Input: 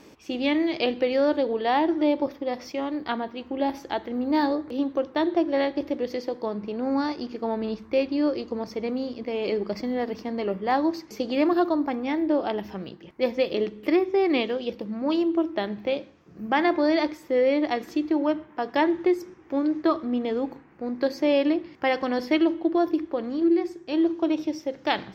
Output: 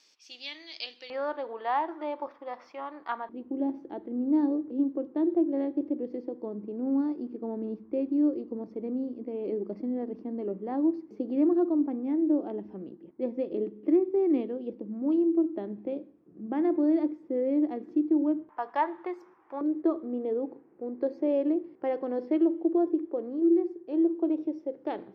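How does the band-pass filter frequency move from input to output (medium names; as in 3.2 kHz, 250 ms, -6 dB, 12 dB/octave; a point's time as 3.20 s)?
band-pass filter, Q 2.1
4.9 kHz
from 1.10 s 1.1 kHz
from 3.29 s 300 Hz
from 18.49 s 990 Hz
from 19.61 s 400 Hz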